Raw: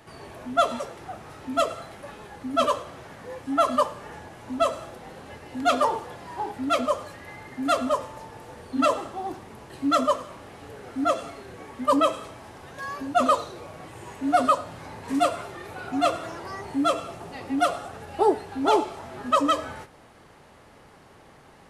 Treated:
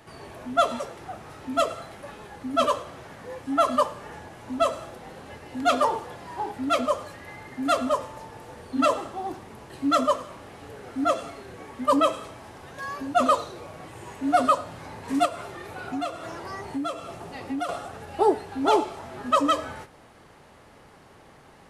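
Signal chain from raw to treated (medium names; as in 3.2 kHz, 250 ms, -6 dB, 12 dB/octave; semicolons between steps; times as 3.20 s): 15.25–17.69 s: compression 6:1, threshold -27 dBFS, peak gain reduction 10.5 dB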